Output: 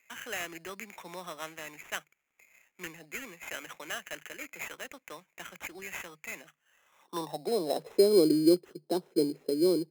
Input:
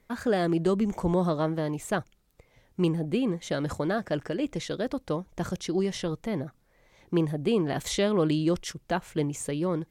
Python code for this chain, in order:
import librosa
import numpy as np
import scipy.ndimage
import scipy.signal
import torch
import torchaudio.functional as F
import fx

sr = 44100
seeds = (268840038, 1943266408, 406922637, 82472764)

y = scipy.signal.sosfilt(scipy.signal.cheby1(8, 1.0, 150.0, 'highpass', fs=sr, output='sos'), x)
y = fx.filter_sweep_bandpass(y, sr, from_hz=2200.0, to_hz=380.0, start_s=6.43, end_s=8.03, q=4.7)
y = fx.sample_hold(y, sr, seeds[0], rate_hz=4600.0, jitter_pct=0)
y = F.gain(torch.from_numpy(y), 9.0).numpy()